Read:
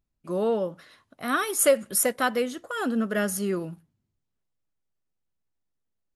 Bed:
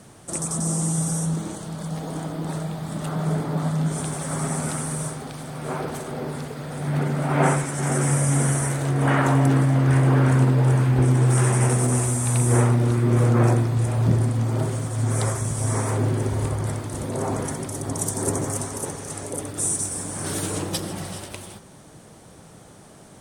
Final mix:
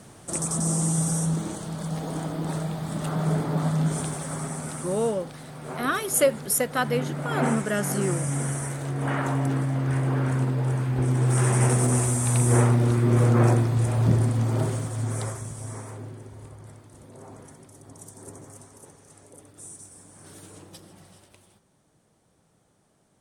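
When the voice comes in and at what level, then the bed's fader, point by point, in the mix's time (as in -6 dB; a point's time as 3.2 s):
4.55 s, -0.5 dB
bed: 3.93 s -0.5 dB
4.55 s -7 dB
10.87 s -7 dB
11.61 s -1 dB
14.69 s -1 dB
16.25 s -19 dB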